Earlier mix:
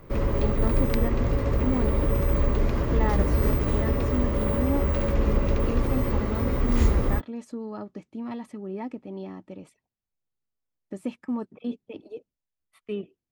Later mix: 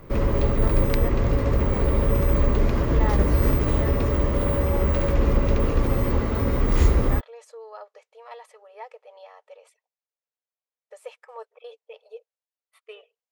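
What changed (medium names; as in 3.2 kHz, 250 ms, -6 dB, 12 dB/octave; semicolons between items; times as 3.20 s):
speech: add brick-wall FIR high-pass 430 Hz; background +3.0 dB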